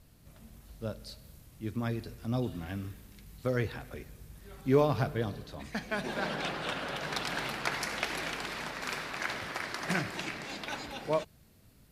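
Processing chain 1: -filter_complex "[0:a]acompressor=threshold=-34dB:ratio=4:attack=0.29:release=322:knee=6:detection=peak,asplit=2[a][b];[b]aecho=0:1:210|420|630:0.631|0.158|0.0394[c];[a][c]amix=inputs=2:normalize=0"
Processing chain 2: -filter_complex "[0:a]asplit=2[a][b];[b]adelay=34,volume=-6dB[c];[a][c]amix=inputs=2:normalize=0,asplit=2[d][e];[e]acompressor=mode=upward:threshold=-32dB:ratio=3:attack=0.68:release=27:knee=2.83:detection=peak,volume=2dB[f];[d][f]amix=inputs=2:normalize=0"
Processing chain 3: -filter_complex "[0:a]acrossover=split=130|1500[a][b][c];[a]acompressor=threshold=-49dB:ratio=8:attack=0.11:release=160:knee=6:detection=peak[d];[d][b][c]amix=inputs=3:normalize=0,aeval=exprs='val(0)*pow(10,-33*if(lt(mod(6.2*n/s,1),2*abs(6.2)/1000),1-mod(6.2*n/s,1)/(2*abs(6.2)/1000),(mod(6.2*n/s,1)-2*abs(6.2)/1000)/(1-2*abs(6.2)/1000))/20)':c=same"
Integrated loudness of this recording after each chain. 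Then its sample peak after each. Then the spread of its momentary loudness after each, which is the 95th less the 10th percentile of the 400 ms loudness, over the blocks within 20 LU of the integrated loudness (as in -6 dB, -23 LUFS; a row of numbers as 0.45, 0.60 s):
-41.0, -26.0, -43.5 LUFS; -25.5, -4.5, -17.5 dBFS; 10, 14, 18 LU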